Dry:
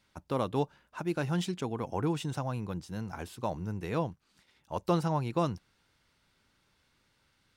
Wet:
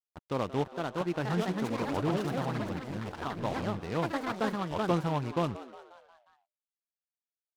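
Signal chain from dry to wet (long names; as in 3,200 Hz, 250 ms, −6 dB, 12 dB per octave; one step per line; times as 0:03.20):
low-pass filter 3,300 Hz 6 dB per octave
dead-zone distortion −48 dBFS
delay with pitch and tempo change per echo 527 ms, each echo +4 semitones, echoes 3
on a send: echo with shifted repeats 179 ms, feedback 53%, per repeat +120 Hz, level −16 dB
on the sum: short delay modulated by noise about 1,900 Hz, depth 0.038 ms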